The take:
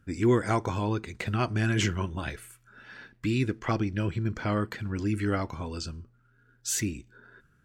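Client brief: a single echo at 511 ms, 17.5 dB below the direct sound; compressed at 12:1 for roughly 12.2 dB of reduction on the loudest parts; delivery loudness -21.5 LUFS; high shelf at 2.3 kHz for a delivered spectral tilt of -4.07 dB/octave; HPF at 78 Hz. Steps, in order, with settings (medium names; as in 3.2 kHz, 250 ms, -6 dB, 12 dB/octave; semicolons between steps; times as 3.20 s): high-pass 78 Hz; treble shelf 2.3 kHz +8.5 dB; compression 12:1, threshold -30 dBFS; delay 511 ms -17.5 dB; trim +14.5 dB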